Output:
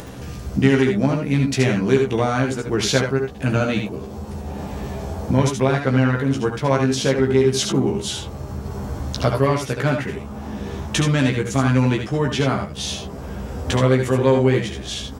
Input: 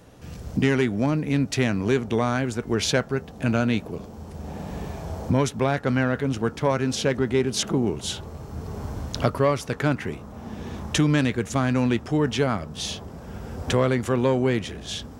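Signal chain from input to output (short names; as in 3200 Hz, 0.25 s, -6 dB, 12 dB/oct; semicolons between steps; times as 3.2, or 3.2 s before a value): doubler 15 ms -3 dB; upward compressor, threshold -27 dBFS; early reflections 70 ms -9 dB, 80 ms -7.5 dB; gain +1 dB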